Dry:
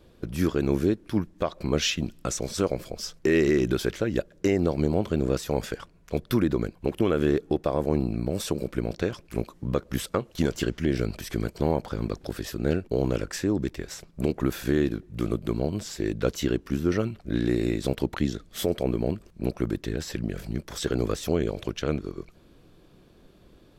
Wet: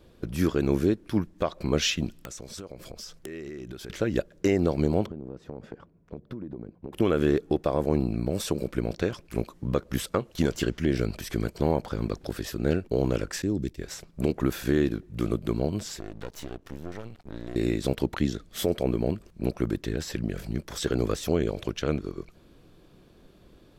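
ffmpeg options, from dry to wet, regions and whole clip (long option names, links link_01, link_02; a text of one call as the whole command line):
ffmpeg -i in.wav -filter_complex "[0:a]asettb=1/sr,asplit=3[link_01][link_02][link_03];[link_01]atrim=end=2.204[link_04];[link_02]atrim=start=2.2:end=3.9,asetpts=PTS-STARTPTS,afade=type=in:duration=0.004:curve=qsin,afade=type=out:start_time=1.696:duration=0.004:curve=qsin,acompressor=threshold=-37dB:ratio=6:attack=3.2:release=140:knee=1:detection=peak,aeval=exprs='(mod(18.8*val(0)+1,2)-1)/18.8':channel_layout=same[link_05];[link_03]atrim=start=3.896[link_06];[link_04][link_05]acrossfade=duration=0.004:curve1=hsin:curve2=qsin[link_07];[link_07][link_06]acrossfade=duration=0.004:curve1=qsin:curve2=hsin,asettb=1/sr,asplit=3[link_08][link_09][link_10];[link_08]atrim=end=5.064[link_11];[link_09]atrim=start=5.06:end=6.93,asetpts=PTS-STARTPTS,afade=type=in:duration=0.004:curve=qsin,afade=type=out:start_time=1.866:duration=0.004:curve=qsin,bandpass=frequency=220:width_type=q:width=0.58,acompressor=threshold=-32dB:ratio=16:attack=3.2:release=140:knee=1:detection=peak[link_12];[link_10]atrim=start=6.926[link_13];[link_11][link_12]acrossfade=duration=0.004:curve1=hsin:curve2=qsin[link_14];[link_14][link_13]acrossfade=duration=0.004:curve1=qsin:curve2=hsin,asettb=1/sr,asplit=3[link_15][link_16][link_17];[link_15]atrim=end=13.424[link_18];[link_16]atrim=start=13.42:end=13.82,asetpts=PTS-STARTPTS,afade=type=in:duration=0.004:curve=qsin,afade=type=out:start_time=0.396:duration=0.004:curve=qsin,equalizer=frequency=1100:width=0.61:gain=-12,agate=range=-33dB:threshold=-41dB:ratio=3:release=100:detection=peak[link_19];[link_17]atrim=start=13.816[link_20];[link_18][link_19]acrossfade=duration=0.004:curve1=hsin:curve2=qsin[link_21];[link_21][link_20]acrossfade=duration=0.004:curve1=qsin:curve2=hsin,asettb=1/sr,asplit=3[link_22][link_23][link_24];[link_22]atrim=end=15.994[link_25];[link_23]atrim=start=15.99:end=17.56,asetpts=PTS-STARTPTS,afade=type=in:duration=0.004:curve=qsin,afade=type=out:start_time=1.566:duration=0.004:curve=qsin,aeval=exprs='max(val(0),0)':channel_layout=same,acompressor=threshold=-39dB:ratio=2:attack=3.2:release=140:knee=1:detection=peak[link_26];[link_24]atrim=start=17.556[link_27];[link_25][link_26]acrossfade=duration=0.004:curve1=hsin:curve2=qsin[link_28];[link_28][link_27]acrossfade=duration=0.004:curve1=qsin:curve2=hsin" out.wav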